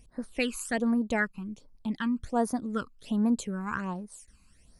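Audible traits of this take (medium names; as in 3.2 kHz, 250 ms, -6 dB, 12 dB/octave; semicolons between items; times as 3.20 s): phasing stages 12, 1.3 Hz, lowest notch 570–2900 Hz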